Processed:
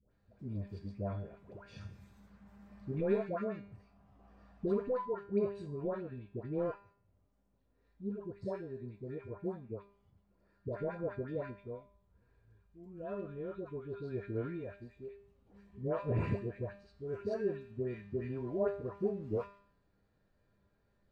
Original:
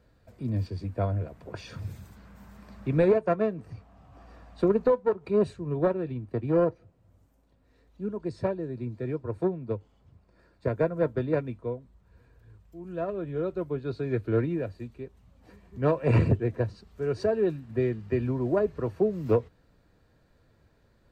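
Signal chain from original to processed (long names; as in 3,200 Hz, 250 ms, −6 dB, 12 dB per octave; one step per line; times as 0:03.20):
low-pass filter 3,800 Hz 6 dB per octave
tuned comb filter 200 Hz, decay 0.56 s, harmonics all, mix 80%
all-pass dispersion highs, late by 114 ms, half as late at 870 Hz
level +1 dB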